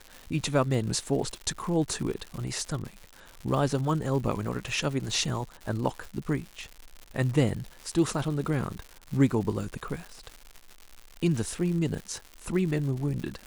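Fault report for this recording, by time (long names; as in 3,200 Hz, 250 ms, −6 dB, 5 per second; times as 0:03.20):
surface crackle 190 per second −35 dBFS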